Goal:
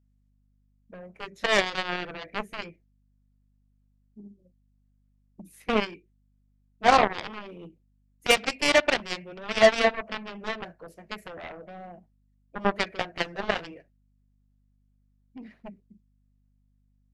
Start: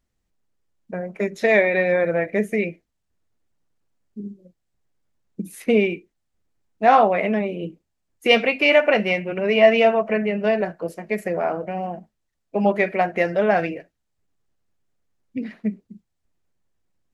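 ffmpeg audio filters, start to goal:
ffmpeg -i in.wav -af "aeval=exprs='val(0)+0.00224*(sin(2*PI*50*n/s)+sin(2*PI*2*50*n/s)/2+sin(2*PI*3*50*n/s)/3+sin(2*PI*4*50*n/s)/4+sin(2*PI*5*50*n/s)/5)':channel_layout=same,aeval=exprs='0.794*(cos(1*acos(clip(val(0)/0.794,-1,1)))-cos(1*PI/2))+0.158*(cos(7*acos(clip(val(0)/0.794,-1,1)))-cos(7*PI/2))':channel_layout=same,volume=-4.5dB" out.wav

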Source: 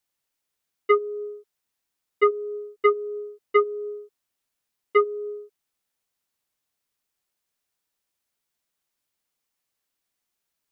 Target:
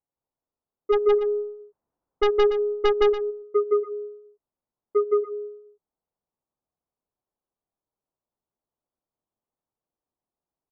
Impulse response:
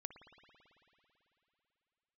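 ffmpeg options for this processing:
-filter_complex "[0:a]lowpass=frequency=1000:width=0.5412,lowpass=frequency=1000:width=1.3066,asplit=3[link_01][link_02][link_03];[link_01]afade=type=out:start_time=0.92:duration=0.02[link_04];[link_02]aeval=exprs='0.266*(cos(1*acos(clip(val(0)/0.266,-1,1)))-cos(1*PI/2))+0.0841*(cos(2*acos(clip(val(0)/0.266,-1,1)))-cos(2*PI/2))+0.075*(cos(5*acos(clip(val(0)/0.266,-1,1)))-cos(5*PI/2))+0.0211*(cos(6*acos(clip(val(0)/0.266,-1,1)))-cos(6*PI/2))+0.0211*(cos(8*acos(clip(val(0)/0.266,-1,1)))-cos(8*PI/2))':channel_layout=same,afade=type=in:start_time=0.92:duration=0.02,afade=type=out:start_time=3.13:duration=0.02[link_05];[link_03]afade=type=in:start_time=3.13:duration=0.02[link_06];[link_04][link_05][link_06]amix=inputs=3:normalize=0,aecho=1:1:166.2|285.7:0.891|0.282,volume=-2dB"

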